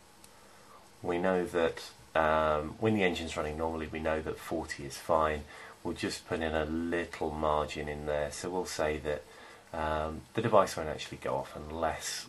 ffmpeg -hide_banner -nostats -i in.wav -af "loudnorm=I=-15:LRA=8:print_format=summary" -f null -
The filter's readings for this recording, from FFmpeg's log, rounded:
Input Integrated:    -32.8 LUFS
Input True Peak:      -9.5 dBTP
Input LRA:             1.8 LU
Input Threshold:     -43.2 LUFS